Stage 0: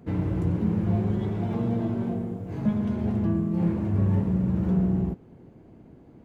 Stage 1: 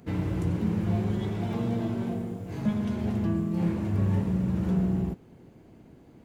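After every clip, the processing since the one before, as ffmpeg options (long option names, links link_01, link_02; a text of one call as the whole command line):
ffmpeg -i in.wav -af "highshelf=frequency=2100:gain=11.5,volume=-2.5dB" out.wav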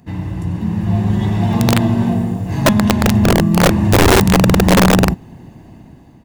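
ffmpeg -i in.wav -af "aecho=1:1:1.1:0.55,dynaudnorm=framelen=440:gausssize=5:maxgain=12.5dB,aeval=exprs='(mod(2.37*val(0)+1,2)-1)/2.37':channel_layout=same,volume=3dB" out.wav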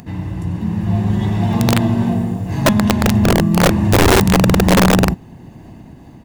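ffmpeg -i in.wav -af "acompressor=mode=upward:threshold=-30dB:ratio=2.5,volume=-1dB" out.wav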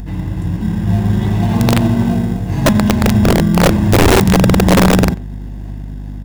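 ffmpeg -i in.wav -filter_complex "[0:a]aeval=exprs='val(0)+0.0447*(sin(2*PI*50*n/s)+sin(2*PI*2*50*n/s)/2+sin(2*PI*3*50*n/s)/3+sin(2*PI*4*50*n/s)/4+sin(2*PI*5*50*n/s)/5)':channel_layout=same,asplit=2[link_01][link_02];[link_02]acrusher=samples=25:mix=1:aa=0.000001,volume=-10dB[link_03];[link_01][link_03]amix=inputs=2:normalize=0,asplit=2[link_04][link_05];[link_05]adelay=90,highpass=300,lowpass=3400,asoftclip=type=hard:threshold=-13.5dB,volume=-14dB[link_06];[link_04][link_06]amix=inputs=2:normalize=0" out.wav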